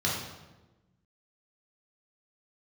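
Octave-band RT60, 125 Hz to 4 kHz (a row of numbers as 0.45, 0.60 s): 1.6, 1.6, 1.2, 1.0, 0.90, 0.80 s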